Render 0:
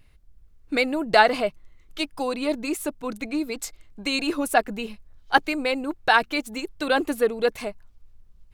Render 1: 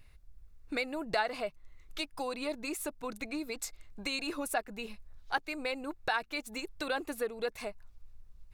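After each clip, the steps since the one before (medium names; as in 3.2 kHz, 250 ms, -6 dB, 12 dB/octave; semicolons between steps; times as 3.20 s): peaking EQ 250 Hz -5.5 dB 1.8 oct; band-stop 3.1 kHz, Q 14; compression 2:1, threshold -37 dBFS, peak gain reduction 14 dB; trim -1 dB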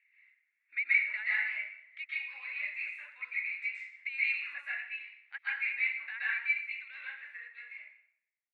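fade out at the end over 2.67 s; Butterworth band-pass 2.1 kHz, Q 4; plate-style reverb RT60 0.7 s, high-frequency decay 0.85×, pre-delay 115 ms, DRR -9.5 dB; trim +4 dB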